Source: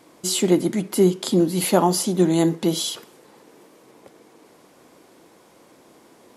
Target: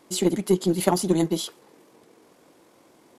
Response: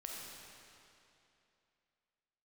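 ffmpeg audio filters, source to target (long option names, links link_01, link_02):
-af "atempo=2,aeval=exprs='0.708*(cos(1*acos(clip(val(0)/0.708,-1,1)))-cos(1*PI/2))+0.0794*(cos(3*acos(clip(val(0)/0.708,-1,1)))-cos(3*PI/2))+0.0126*(cos(4*acos(clip(val(0)/0.708,-1,1)))-cos(4*PI/2))':channel_layout=same"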